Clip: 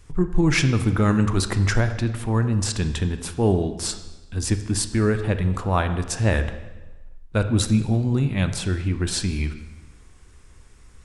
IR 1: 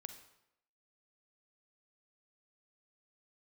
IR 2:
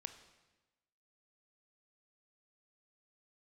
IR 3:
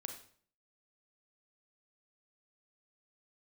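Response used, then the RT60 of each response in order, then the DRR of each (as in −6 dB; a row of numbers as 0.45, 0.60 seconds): 2; 0.80, 1.1, 0.50 seconds; 7.5, 8.5, 4.5 decibels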